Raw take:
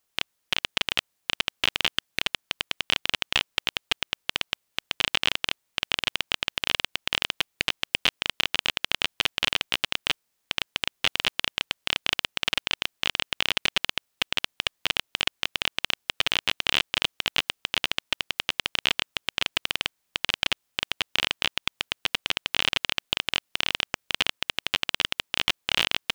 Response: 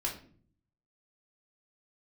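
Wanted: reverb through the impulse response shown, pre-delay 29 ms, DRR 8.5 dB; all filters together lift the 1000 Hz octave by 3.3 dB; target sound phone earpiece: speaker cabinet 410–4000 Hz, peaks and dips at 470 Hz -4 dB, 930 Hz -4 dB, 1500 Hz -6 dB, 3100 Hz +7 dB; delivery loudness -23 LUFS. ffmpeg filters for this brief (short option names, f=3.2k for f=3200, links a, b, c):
-filter_complex "[0:a]equalizer=f=1k:t=o:g=8,asplit=2[a][b];[1:a]atrim=start_sample=2205,adelay=29[c];[b][c]afir=irnorm=-1:irlink=0,volume=-12dB[d];[a][d]amix=inputs=2:normalize=0,highpass=410,equalizer=f=470:t=q:w=4:g=-4,equalizer=f=930:t=q:w=4:g=-4,equalizer=f=1.5k:t=q:w=4:g=-6,equalizer=f=3.1k:t=q:w=4:g=7,lowpass=f=4k:w=0.5412,lowpass=f=4k:w=1.3066,volume=-1dB"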